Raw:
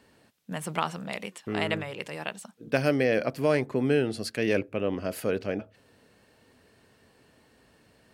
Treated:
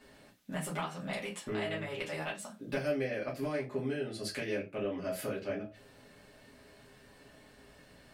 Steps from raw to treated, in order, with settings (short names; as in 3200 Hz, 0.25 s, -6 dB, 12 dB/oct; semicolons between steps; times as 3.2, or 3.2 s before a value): compressor 4:1, threshold -37 dBFS, peak gain reduction 15.5 dB; reverb RT60 0.25 s, pre-delay 3 ms, DRR -6 dB; gain -3.5 dB